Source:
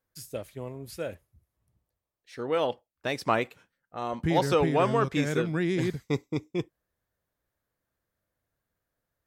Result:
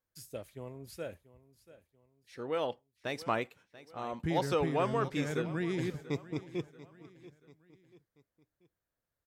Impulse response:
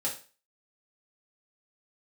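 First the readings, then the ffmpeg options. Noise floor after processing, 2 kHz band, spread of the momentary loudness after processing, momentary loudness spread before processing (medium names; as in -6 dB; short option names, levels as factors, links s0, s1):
under -85 dBFS, -6.5 dB, 18 LU, 15 LU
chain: -af "aecho=1:1:686|1372|2058:0.133|0.056|0.0235,volume=0.473"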